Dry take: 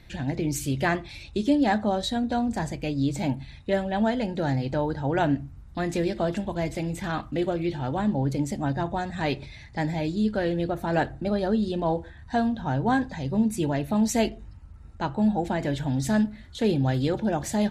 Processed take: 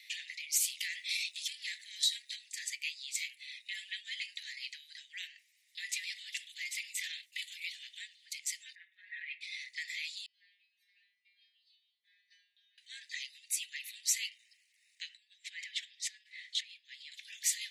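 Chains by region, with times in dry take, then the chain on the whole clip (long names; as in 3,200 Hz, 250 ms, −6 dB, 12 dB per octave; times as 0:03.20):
0:00.57–0:02.36: spectral tilt +2.5 dB per octave + downward compressor 8 to 1, threshold −29 dBFS + saturating transformer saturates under 1,100 Hz
0:07.26–0:07.83: high-pass filter 150 Hz + high-shelf EQ 6,400 Hz +11.5 dB + expander for the loud parts, over −38 dBFS
0:08.75–0:09.41: low-pass filter 2,100 Hz 24 dB per octave + parametric band 760 Hz +8.5 dB 0.76 octaves + comb filter 5.3 ms, depth 94%
0:10.26–0:12.78: downward compressor 10 to 1, threshold −37 dBFS + Savitzky-Golay smoothing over 15 samples + stiff-string resonator 120 Hz, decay 0.8 s, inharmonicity 0.002
0:15.09–0:17.12: high-shelf EQ 2,300 Hz −7.5 dB + compressor whose output falls as the input rises −32 dBFS + low-pass filter 7,500 Hz
whole clip: brickwall limiter −22 dBFS; Butterworth high-pass 1,900 Hz 96 dB per octave; level +5 dB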